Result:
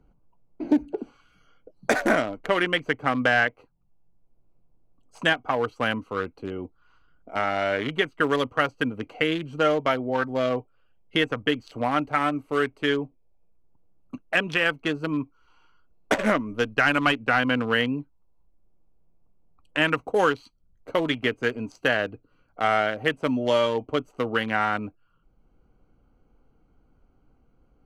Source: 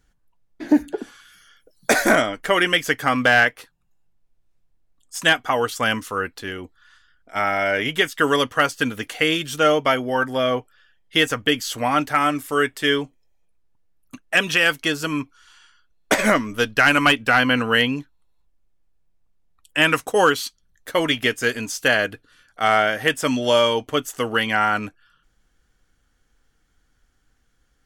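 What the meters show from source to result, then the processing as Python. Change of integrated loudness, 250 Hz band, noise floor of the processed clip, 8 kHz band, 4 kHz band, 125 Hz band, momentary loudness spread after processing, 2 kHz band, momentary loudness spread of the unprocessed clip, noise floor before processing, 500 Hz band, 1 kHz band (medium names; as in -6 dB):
-5.0 dB, -3.0 dB, -64 dBFS, -15.0 dB, -8.5 dB, -3.0 dB, 10 LU, -6.0 dB, 11 LU, -65 dBFS, -3.5 dB, -5.0 dB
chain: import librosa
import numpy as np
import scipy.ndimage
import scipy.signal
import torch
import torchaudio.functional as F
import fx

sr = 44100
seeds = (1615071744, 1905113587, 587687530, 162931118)

y = fx.wiener(x, sr, points=25)
y = fx.lowpass(y, sr, hz=3500.0, slope=6)
y = fx.band_squash(y, sr, depth_pct=40)
y = y * librosa.db_to_amplitude(-3.0)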